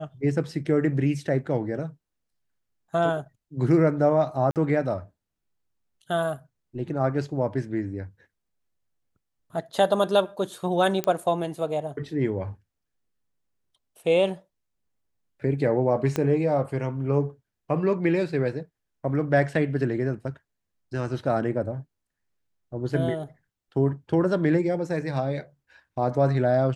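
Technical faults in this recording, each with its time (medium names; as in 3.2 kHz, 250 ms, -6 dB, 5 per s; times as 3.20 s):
4.51–4.56 s: dropout 48 ms
11.04 s: pop -11 dBFS
16.16 s: pop -12 dBFS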